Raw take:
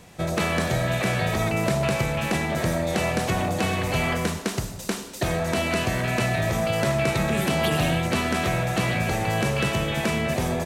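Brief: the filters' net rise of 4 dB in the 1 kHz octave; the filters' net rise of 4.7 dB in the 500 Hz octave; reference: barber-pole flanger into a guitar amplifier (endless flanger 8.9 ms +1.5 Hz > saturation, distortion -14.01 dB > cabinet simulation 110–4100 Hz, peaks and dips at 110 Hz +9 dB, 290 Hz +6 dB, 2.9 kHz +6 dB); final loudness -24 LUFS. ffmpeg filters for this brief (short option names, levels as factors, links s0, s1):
-filter_complex "[0:a]equalizer=f=500:t=o:g=4.5,equalizer=f=1000:t=o:g=3.5,asplit=2[s0][s1];[s1]adelay=8.9,afreqshift=1.5[s2];[s0][s2]amix=inputs=2:normalize=1,asoftclip=threshold=0.0841,highpass=110,equalizer=f=110:t=q:w=4:g=9,equalizer=f=290:t=q:w=4:g=6,equalizer=f=2900:t=q:w=4:g=6,lowpass=f=4100:w=0.5412,lowpass=f=4100:w=1.3066,volume=1.41"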